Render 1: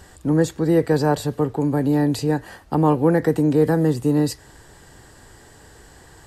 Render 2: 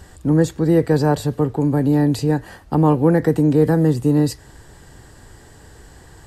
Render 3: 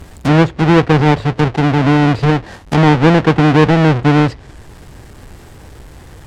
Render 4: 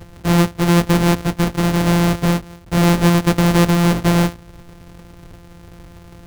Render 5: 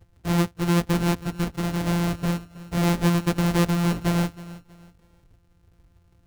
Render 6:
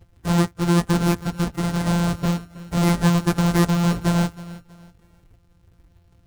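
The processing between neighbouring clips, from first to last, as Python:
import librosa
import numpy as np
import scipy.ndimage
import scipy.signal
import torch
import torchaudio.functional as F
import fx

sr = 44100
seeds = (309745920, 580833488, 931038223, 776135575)

y1 = fx.low_shelf(x, sr, hz=230.0, db=6.0)
y2 = fx.halfwave_hold(y1, sr)
y2 = fx.env_lowpass_down(y2, sr, base_hz=2900.0, full_db=-12.5)
y2 = y2 * 10.0 ** (2.0 / 20.0)
y3 = np.r_[np.sort(y2[:len(y2) // 256 * 256].reshape(-1, 256), axis=1).ravel(), y2[len(y2) // 256 * 256:]]
y3 = y3 * 10.0 ** (-4.0 / 20.0)
y4 = fx.bin_expand(y3, sr, power=1.5)
y4 = fx.echo_feedback(y4, sr, ms=320, feedback_pct=32, wet_db=-18.0)
y4 = y4 * 10.0 ** (-6.5 / 20.0)
y5 = fx.spec_quant(y4, sr, step_db=15)
y5 = y5 * 10.0 ** (3.5 / 20.0)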